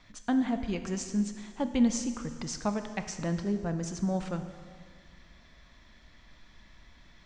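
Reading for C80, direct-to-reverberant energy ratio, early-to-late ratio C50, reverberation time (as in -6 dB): 10.0 dB, 7.5 dB, 9.0 dB, 1.9 s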